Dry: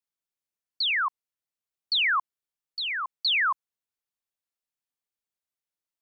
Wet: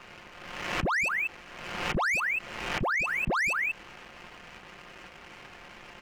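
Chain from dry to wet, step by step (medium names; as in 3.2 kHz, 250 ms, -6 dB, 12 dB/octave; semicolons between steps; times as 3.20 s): jump at every zero crossing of -39.5 dBFS; high-pass 760 Hz 12 dB/octave; comb 5.7 ms, depth 43%; on a send: delay 186 ms -11.5 dB; on the sum: frequency inversion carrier 3.7 kHz; waveshaping leveller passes 2; compression, threshold -28 dBFS, peak gain reduction 9.5 dB; peak limiter -29.5 dBFS, peak gain reduction 7.5 dB; swell ahead of each attack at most 44 dB/s; trim +5.5 dB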